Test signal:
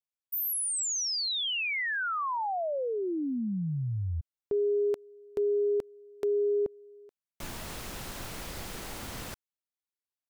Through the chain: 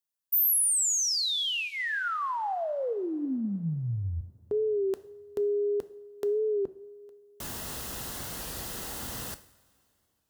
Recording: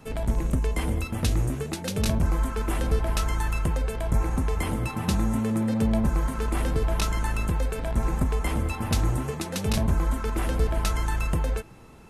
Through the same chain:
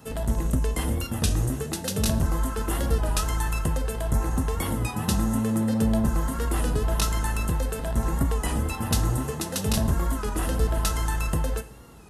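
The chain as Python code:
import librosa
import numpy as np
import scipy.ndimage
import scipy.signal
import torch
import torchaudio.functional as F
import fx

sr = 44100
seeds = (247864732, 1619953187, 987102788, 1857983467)

y = scipy.signal.sosfilt(scipy.signal.butter(2, 41.0, 'highpass', fs=sr, output='sos'), x)
y = fx.high_shelf(y, sr, hz=6800.0, db=8.5)
y = fx.notch(y, sr, hz=2300.0, q=6.0)
y = fx.rev_double_slope(y, sr, seeds[0], early_s=0.58, late_s=3.0, knee_db=-18, drr_db=11.5)
y = fx.record_warp(y, sr, rpm=33.33, depth_cents=100.0)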